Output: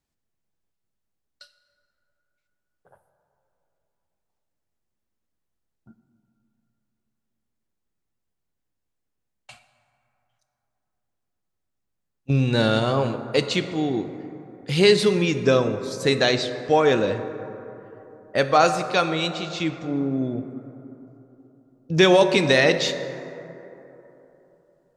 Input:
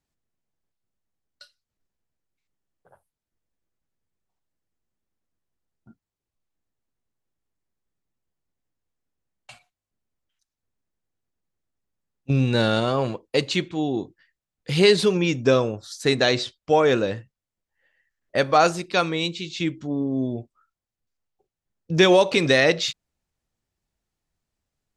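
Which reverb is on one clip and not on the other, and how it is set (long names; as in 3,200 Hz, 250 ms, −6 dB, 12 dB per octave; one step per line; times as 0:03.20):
dense smooth reverb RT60 3.4 s, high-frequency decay 0.35×, DRR 9 dB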